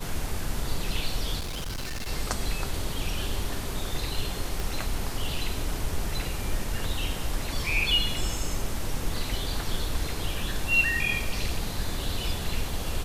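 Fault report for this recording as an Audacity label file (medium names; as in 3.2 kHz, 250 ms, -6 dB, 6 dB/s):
1.390000	2.090000	clipped -29.5 dBFS
4.600000	4.600000	pop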